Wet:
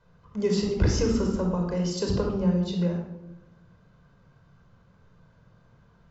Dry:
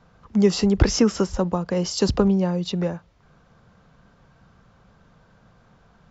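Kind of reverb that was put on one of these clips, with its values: simulated room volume 3100 m³, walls furnished, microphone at 5 m; trim -10.5 dB

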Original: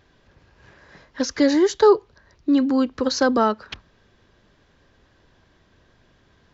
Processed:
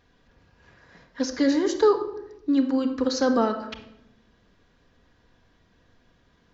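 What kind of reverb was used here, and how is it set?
simulated room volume 2600 m³, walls furnished, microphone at 1.8 m; trim -5.5 dB

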